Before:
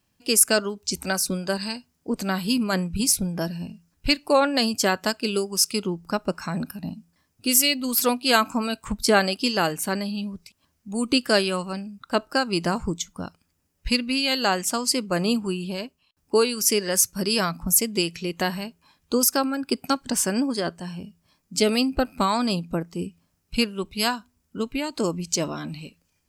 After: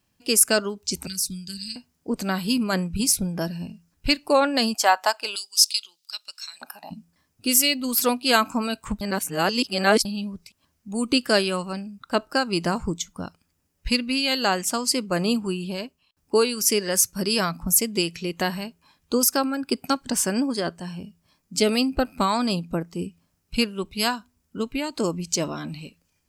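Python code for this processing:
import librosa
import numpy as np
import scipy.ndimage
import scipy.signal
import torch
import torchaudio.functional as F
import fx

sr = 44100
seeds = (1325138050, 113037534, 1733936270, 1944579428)

y = fx.cheby1_bandstop(x, sr, low_hz=130.0, high_hz=4300.0, order=2, at=(1.07, 1.76))
y = fx.filter_lfo_highpass(y, sr, shape='square', hz=fx.line((4.73, 0.76), (6.9, 0.24)), low_hz=810.0, high_hz=3800.0, q=3.4, at=(4.73, 6.9), fade=0.02)
y = fx.edit(y, sr, fx.reverse_span(start_s=9.01, length_s=1.04), tone=tone)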